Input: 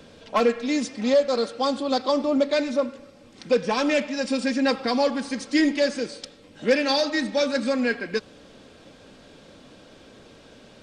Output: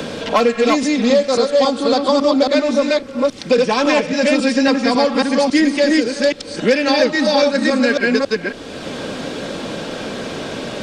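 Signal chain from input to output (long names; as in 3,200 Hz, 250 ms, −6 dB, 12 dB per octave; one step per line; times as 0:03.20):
delay that plays each chunk backwards 275 ms, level −1.5 dB
multiband upward and downward compressor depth 70%
level +6 dB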